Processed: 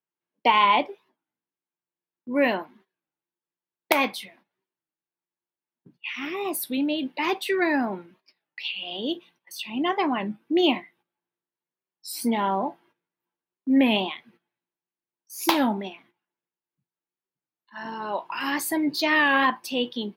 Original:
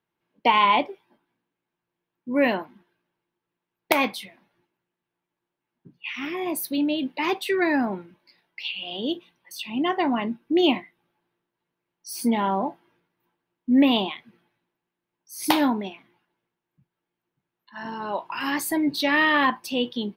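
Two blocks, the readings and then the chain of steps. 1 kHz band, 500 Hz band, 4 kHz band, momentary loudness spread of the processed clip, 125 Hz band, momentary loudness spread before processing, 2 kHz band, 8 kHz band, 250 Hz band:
0.0 dB, -0.5 dB, -0.5 dB, 16 LU, -1.5 dB, 17 LU, 0.0 dB, 0.0 dB, -2.0 dB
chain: gate -55 dBFS, range -13 dB; HPF 200 Hz 6 dB/oct; record warp 33 1/3 rpm, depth 160 cents

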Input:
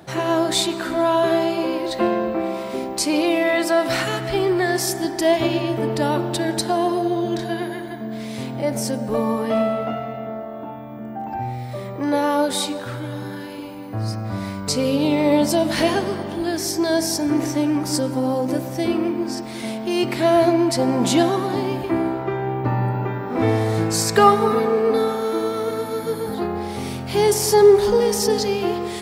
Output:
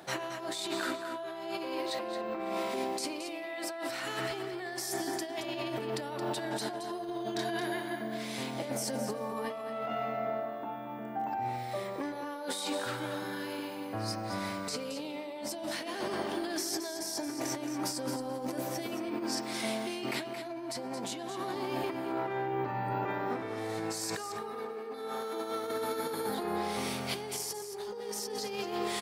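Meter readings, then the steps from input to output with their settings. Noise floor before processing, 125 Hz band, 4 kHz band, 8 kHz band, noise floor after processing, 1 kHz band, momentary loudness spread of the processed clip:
-32 dBFS, -18.0 dB, -11.5 dB, -11.5 dB, -41 dBFS, -12.5 dB, 5 LU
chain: HPF 500 Hz 6 dB/oct; limiter -14 dBFS, peak gain reduction 11.5 dB; negative-ratio compressor -30 dBFS, ratio -1; on a send: echo 0.222 s -9 dB; on the sum: gain -6.5 dB

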